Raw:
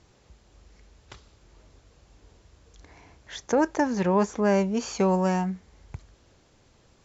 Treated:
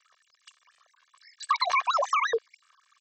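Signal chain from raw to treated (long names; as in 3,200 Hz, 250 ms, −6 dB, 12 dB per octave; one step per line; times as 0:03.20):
three sine waves on the formant tracks
comb filter 4.1 ms, depth 88%
downward compressor 6 to 1, threshold −21 dBFS, peak gain reduction 11 dB
wrong playback speed 33 rpm record played at 78 rpm
wow of a warped record 45 rpm, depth 100 cents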